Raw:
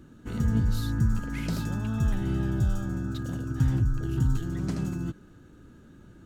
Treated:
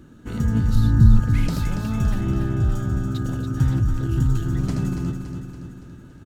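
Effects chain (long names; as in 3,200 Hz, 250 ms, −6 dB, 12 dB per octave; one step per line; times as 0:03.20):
0:00.75–0:01.20: spectral tilt −2 dB per octave
0:02.21–0:02.72: low-pass filter 2,500 Hz 6 dB per octave
repeating echo 283 ms, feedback 56%, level −7.5 dB
level +4 dB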